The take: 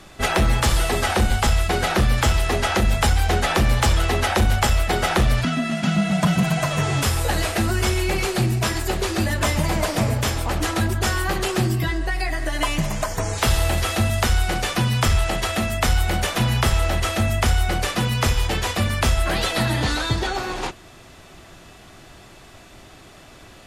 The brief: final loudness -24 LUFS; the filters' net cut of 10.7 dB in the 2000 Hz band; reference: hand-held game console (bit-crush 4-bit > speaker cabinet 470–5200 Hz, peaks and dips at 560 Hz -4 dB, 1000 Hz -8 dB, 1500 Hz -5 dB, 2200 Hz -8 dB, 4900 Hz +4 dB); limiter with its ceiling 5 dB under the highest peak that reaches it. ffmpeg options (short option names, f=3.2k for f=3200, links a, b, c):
-af "equalizer=f=2k:t=o:g=-7.5,alimiter=limit=-15dB:level=0:latency=1,acrusher=bits=3:mix=0:aa=0.000001,highpass=470,equalizer=f=560:t=q:w=4:g=-4,equalizer=f=1k:t=q:w=4:g=-8,equalizer=f=1.5k:t=q:w=4:g=-5,equalizer=f=2.2k:t=q:w=4:g=-8,equalizer=f=4.9k:t=q:w=4:g=4,lowpass=f=5.2k:w=0.5412,lowpass=f=5.2k:w=1.3066,volume=4.5dB"